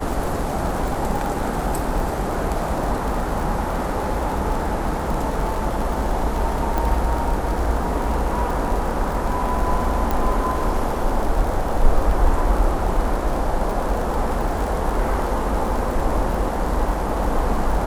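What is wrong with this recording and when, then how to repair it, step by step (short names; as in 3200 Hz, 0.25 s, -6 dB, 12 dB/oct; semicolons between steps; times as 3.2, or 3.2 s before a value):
crackle 55/s -25 dBFS
6.78 pop
10.11 pop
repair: de-click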